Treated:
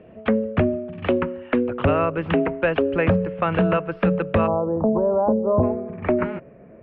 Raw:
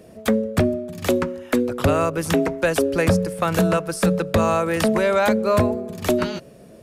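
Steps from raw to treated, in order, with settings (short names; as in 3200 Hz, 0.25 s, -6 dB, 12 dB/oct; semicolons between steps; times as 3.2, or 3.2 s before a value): elliptic low-pass 2900 Hz, stop band 60 dB, from 4.46 s 970 Hz, from 5.62 s 2300 Hz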